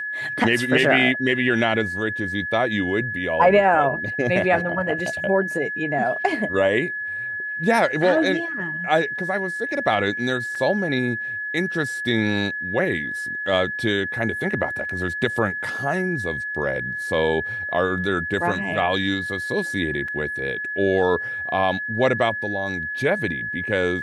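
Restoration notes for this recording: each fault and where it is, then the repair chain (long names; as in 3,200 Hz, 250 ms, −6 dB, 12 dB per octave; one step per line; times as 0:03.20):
whistle 1,700 Hz −26 dBFS
0:10.55: drop-out 4.1 ms
0:20.08: drop-out 4 ms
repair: notch filter 1,700 Hz, Q 30
repair the gap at 0:10.55, 4.1 ms
repair the gap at 0:20.08, 4 ms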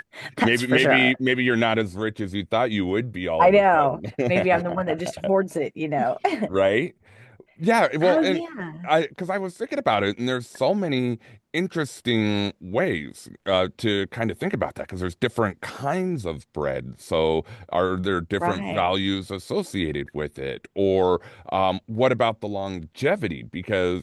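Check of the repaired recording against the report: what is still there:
none of them is left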